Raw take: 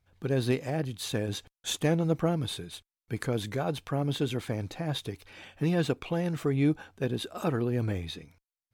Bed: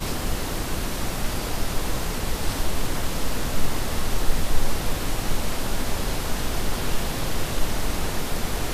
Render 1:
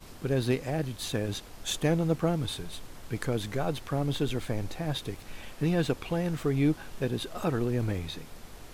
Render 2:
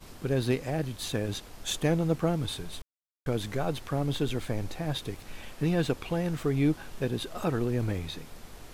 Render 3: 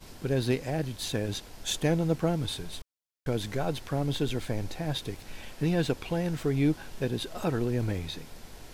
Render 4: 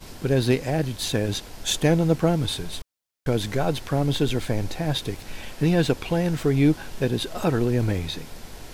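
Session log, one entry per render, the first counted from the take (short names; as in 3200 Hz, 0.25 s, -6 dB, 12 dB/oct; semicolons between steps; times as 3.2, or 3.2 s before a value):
add bed -20.5 dB
2.82–3.26 mute
bell 5000 Hz +2.5 dB; notch 1200 Hz, Q 10
gain +6.5 dB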